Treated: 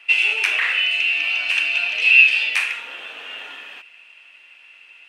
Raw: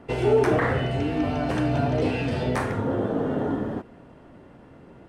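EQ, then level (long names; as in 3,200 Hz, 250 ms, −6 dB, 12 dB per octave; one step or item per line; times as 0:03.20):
high-pass with resonance 2,600 Hz, resonance Q 12
+7.5 dB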